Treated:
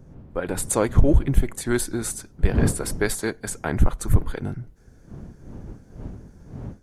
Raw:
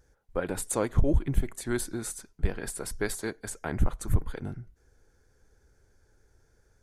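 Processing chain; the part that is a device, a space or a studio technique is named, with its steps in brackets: smartphone video outdoors (wind noise 180 Hz -40 dBFS; level rider gain up to 7.5 dB; AAC 128 kbps 48 kHz)

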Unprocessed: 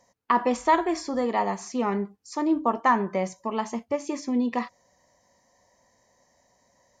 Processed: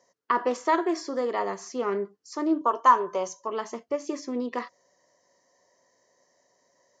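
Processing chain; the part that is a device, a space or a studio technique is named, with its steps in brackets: full-range speaker at full volume (loudspeaker Doppler distortion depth 0.12 ms; cabinet simulation 220–7000 Hz, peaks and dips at 220 Hz -9 dB, 390 Hz +4 dB, 820 Hz -9 dB, 2.4 kHz -7 dB, 3.7 kHz -4 dB); 2.61–3.48 s: graphic EQ with 31 bands 200 Hz -10 dB, 315 Hz -7 dB, 1 kHz +9 dB, 2 kHz -9 dB, 3.15 kHz +6 dB, 6.3 kHz +9 dB

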